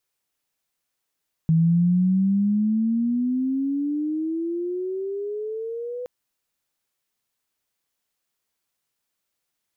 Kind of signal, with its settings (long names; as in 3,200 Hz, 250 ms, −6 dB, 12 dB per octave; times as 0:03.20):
glide logarithmic 160 Hz → 500 Hz −14.5 dBFS → −28.5 dBFS 4.57 s